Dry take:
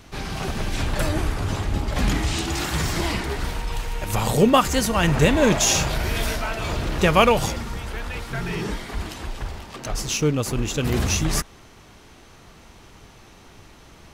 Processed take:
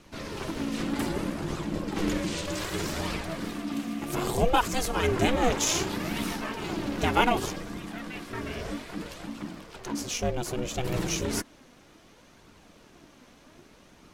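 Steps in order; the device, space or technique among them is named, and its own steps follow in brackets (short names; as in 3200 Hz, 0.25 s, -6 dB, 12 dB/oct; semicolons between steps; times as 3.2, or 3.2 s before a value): alien voice (ring modulator 250 Hz; flange 0.64 Hz, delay 0.7 ms, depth 3.5 ms, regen +63%)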